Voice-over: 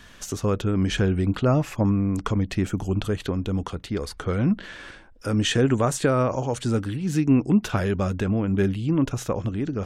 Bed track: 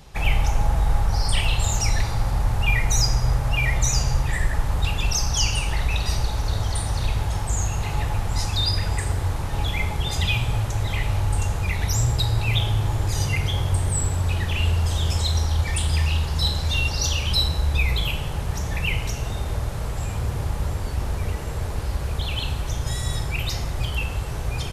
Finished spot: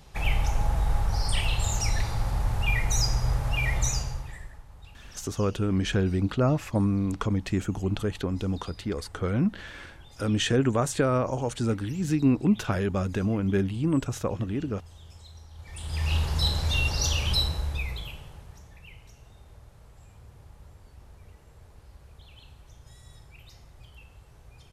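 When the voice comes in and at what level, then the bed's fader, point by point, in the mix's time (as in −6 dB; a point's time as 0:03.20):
4.95 s, −3.0 dB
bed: 0:03.87 −5 dB
0:04.65 −26 dB
0:15.52 −26 dB
0:16.13 −3 dB
0:17.31 −3 dB
0:18.76 −24.5 dB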